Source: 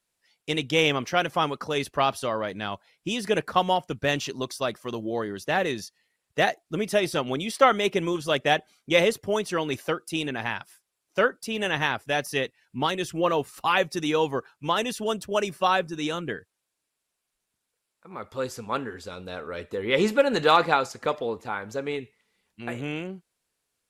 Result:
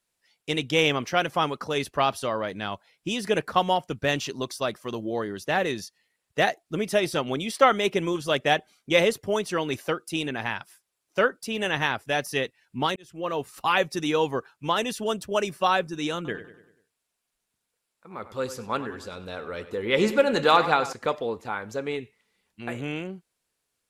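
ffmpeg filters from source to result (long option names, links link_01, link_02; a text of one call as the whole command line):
ffmpeg -i in.wav -filter_complex "[0:a]asettb=1/sr,asplit=3[link_01][link_02][link_03];[link_01]atrim=end=16.154[link_04];[link_02]atrim=start=16.15:end=20.93,asetpts=PTS-STARTPTS,afade=type=in:duration=0.004:curve=qsin,afade=type=out:start_time=4.776:duration=0.004:curve=qsin,asplit=2[link_05][link_06];[link_06]adelay=97,lowpass=frequency=4300:poles=1,volume=-13dB,asplit=2[link_07][link_08];[link_08]adelay=97,lowpass=frequency=4300:poles=1,volume=0.5,asplit=2[link_09][link_10];[link_10]adelay=97,lowpass=frequency=4300:poles=1,volume=0.5,asplit=2[link_11][link_12];[link_12]adelay=97,lowpass=frequency=4300:poles=1,volume=0.5,asplit=2[link_13][link_14];[link_14]adelay=97,lowpass=frequency=4300:poles=1,volume=0.5[link_15];[link_05][link_07][link_09][link_11][link_13][link_15]amix=inputs=6:normalize=0,atrim=end_sample=210798[link_16];[link_03]atrim=start=20.926[link_17];[link_04][link_16]acrossfade=duration=0.004:curve1=hsin:curve2=qsin[link_18];[link_18][link_17]acrossfade=duration=0.004:curve1=qsin:curve2=hsin,asplit=2[link_19][link_20];[link_19]atrim=end=12.96,asetpts=PTS-STARTPTS,afade=type=out:start_time=12.956:duration=0.004:curve=hsin[link_21];[link_20]atrim=start=12.96,asetpts=PTS-STARTPTS,afade=type=in:duration=0.64[link_22];[link_21][link_22]concat=n=2:v=0:a=1" out.wav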